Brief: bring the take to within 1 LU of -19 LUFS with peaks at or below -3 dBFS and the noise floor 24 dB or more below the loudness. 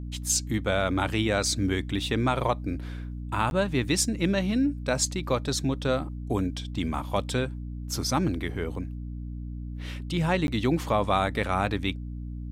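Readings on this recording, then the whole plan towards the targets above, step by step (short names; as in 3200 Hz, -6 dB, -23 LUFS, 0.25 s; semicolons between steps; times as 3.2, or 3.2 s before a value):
dropouts 2; longest dropout 11 ms; hum 60 Hz; harmonics up to 300 Hz; hum level -33 dBFS; loudness -27.5 LUFS; peak -10.5 dBFS; loudness target -19.0 LUFS
-> interpolate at 3.5/10.47, 11 ms; notches 60/120/180/240/300 Hz; gain +8.5 dB; limiter -3 dBFS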